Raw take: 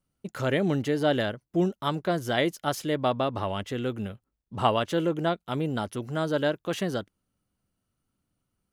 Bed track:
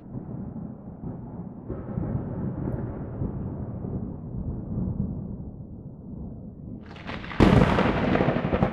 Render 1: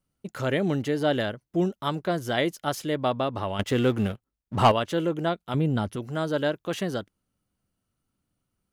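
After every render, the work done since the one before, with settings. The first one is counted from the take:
0:03.59–0:04.72: leveller curve on the samples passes 2
0:05.54–0:05.96: bass and treble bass +8 dB, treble −3 dB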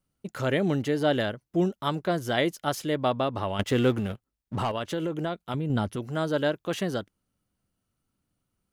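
0:03.99–0:05.70: downward compressor, threshold −25 dBFS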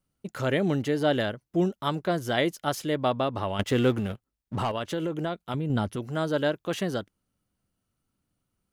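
no processing that can be heard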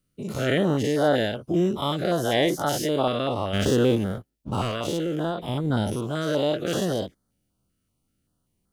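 every bin's largest magnitude spread in time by 120 ms
notch on a step sequencer 5.2 Hz 850–2,600 Hz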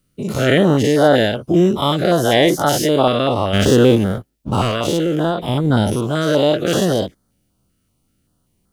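level +9 dB
brickwall limiter −1 dBFS, peak gain reduction 1.5 dB

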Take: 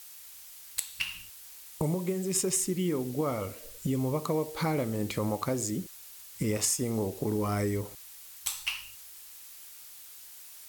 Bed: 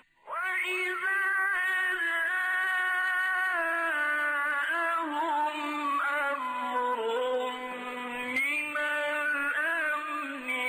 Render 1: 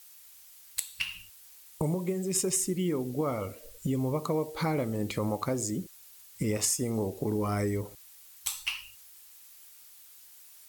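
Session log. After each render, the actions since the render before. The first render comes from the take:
broadband denoise 6 dB, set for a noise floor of −49 dBFS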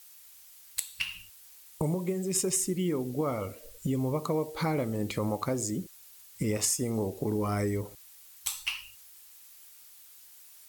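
no processing that can be heard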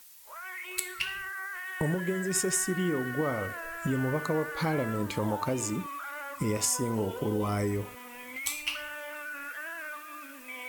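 mix in bed −10.5 dB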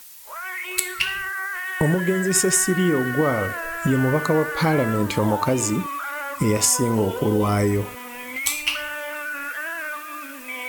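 level +9.5 dB

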